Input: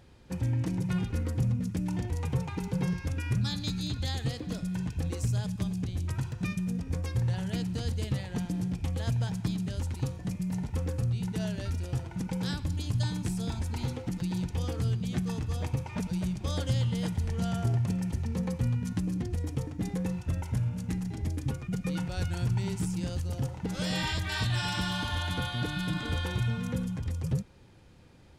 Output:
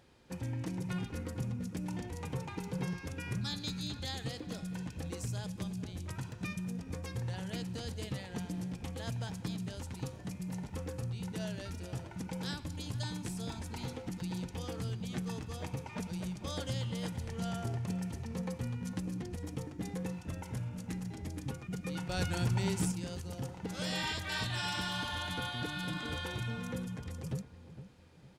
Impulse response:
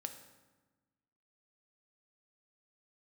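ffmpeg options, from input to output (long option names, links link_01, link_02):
-filter_complex "[0:a]lowshelf=frequency=140:gain=-11.5,asplit=2[link_01][link_02];[link_02]adelay=458,lowpass=frequency=1100:poles=1,volume=-12dB,asplit=2[link_03][link_04];[link_04]adelay=458,lowpass=frequency=1100:poles=1,volume=0.35,asplit=2[link_05][link_06];[link_06]adelay=458,lowpass=frequency=1100:poles=1,volume=0.35,asplit=2[link_07][link_08];[link_08]adelay=458,lowpass=frequency=1100:poles=1,volume=0.35[link_09];[link_01][link_03][link_05][link_07][link_09]amix=inputs=5:normalize=0,asettb=1/sr,asplit=3[link_10][link_11][link_12];[link_10]atrim=end=22.094[link_13];[link_11]atrim=start=22.09:end=22.92,asetpts=PTS-STARTPTS,afade=type=in:duration=0.004:curve=qsin,afade=type=out:start_time=0.826:duration=0.004:curve=qsin,acontrast=59[link_14];[link_12]atrim=start=22.916[link_15];[link_13][link_14]acrossfade=duration=0.004:curve1=hsin:curve2=qsin[link_16];[link_16][link_15]acrossfade=duration=0.004:curve1=qsin:curve2=hsin,volume=-3dB"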